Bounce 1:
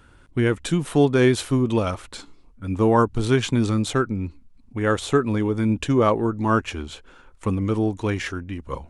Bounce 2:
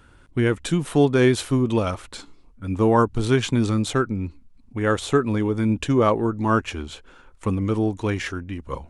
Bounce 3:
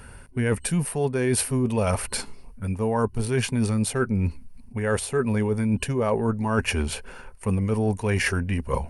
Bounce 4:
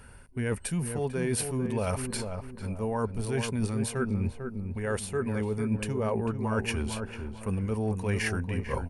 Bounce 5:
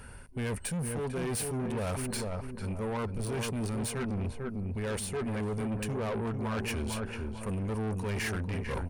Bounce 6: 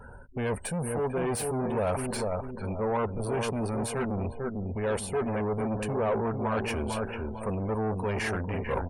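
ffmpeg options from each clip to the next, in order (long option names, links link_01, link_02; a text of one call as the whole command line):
ffmpeg -i in.wav -af anull out.wav
ffmpeg -i in.wav -af "superequalizer=6b=0.282:10b=0.562:13b=0.398:15b=0.708:16b=3.16,areverse,acompressor=threshold=-29dB:ratio=12,areverse,volume=9dB" out.wav
ffmpeg -i in.wav -filter_complex "[0:a]asplit=2[link_01][link_02];[link_02]adelay=447,lowpass=frequency=1200:poles=1,volume=-6dB,asplit=2[link_03][link_04];[link_04]adelay=447,lowpass=frequency=1200:poles=1,volume=0.37,asplit=2[link_05][link_06];[link_06]adelay=447,lowpass=frequency=1200:poles=1,volume=0.37,asplit=2[link_07][link_08];[link_08]adelay=447,lowpass=frequency=1200:poles=1,volume=0.37[link_09];[link_01][link_03][link_05][link_07][link_09]amix=inputs=5:normalize=0,volume=-6.5dB" out.wav
ffmpeg -i in.wav -af "asoftclip=type=tanh:threshold=-33dB,volume=3dB" out.wav
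ffmpeg -i in.wav -af "equalizer=frequency=700:width=0.7:gain=9,afftdn=noise_reduction=29:noise_floor=-47" out.wav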